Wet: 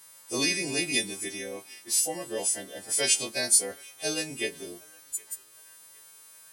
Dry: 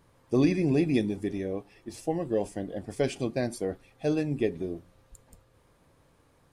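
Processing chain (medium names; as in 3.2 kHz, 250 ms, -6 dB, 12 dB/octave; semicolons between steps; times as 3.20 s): partials quantised in pitch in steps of 2 st; tilt EQ +4.5 dB/octave; band-passed feedback delay 764 ms, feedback 64%, band-pass 1.4 kHz, level -23 dB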